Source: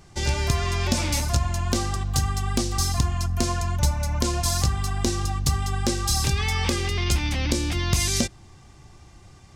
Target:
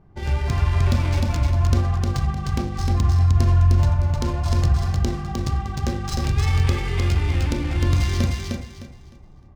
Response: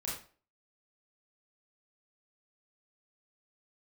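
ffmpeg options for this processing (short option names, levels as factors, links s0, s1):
-filter_complex "[0:a]flanger=delay=6.3:depth=3.2:regen=-73:speed=1.5:shape=sinusoidal,asplit=2[s0][s1];[1:a]atrim=start_sample=2205,lowshelf=f=150:g=7.5[s2];[s1][s2]afir=irnorm=-1:irlink=0,volume=0.668[s3];[s0][s3]amix=inputs=2:normalize=0,adynamicsmooth=sensitivity=3:basefreq=1100,bandreject=f=50:t=h:w=6,bandreject=f=100:t=h:w=6,asplit=2[s4][s5];[s5]aecho=0:1:306|612|918|1224:0.708|0.191|0.0516|0.0139[s6];[s4][s6]amix=inputs=2:normalize=0,volume=0.841"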